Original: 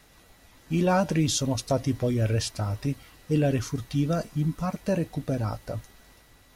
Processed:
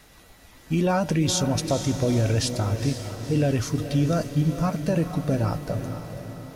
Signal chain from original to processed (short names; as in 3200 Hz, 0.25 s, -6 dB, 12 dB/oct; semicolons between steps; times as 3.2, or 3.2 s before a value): limiter -18.5 dBFS, peak gain reduction 6.5 dB; diffused feedback echo 0.481 s, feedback 52%, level -9 dB; gain +4 dB